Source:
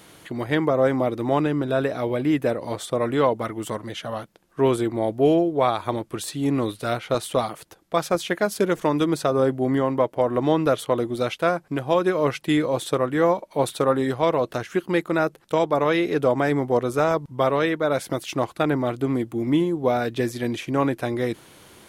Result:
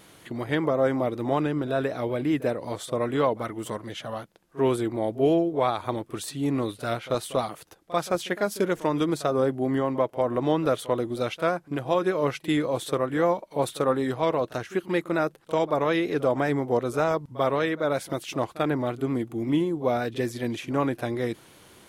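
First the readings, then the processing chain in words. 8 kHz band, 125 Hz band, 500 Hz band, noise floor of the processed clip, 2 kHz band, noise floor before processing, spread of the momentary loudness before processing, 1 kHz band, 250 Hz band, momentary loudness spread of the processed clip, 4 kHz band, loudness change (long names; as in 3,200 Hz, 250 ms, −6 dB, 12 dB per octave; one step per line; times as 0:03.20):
−3.5 dB, −3.5 dB, −3.5 dB, −53 dBFS, −3.5 dB, −54 dBFS, 7 LU, −3.5 dB, −3.5 dB, 7 LU, −3.5 dB, −3.5 dB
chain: pitch vibrato 5.3 Hz 37 cents
backwards echo 42 ms −18 dB
level −3.5 dB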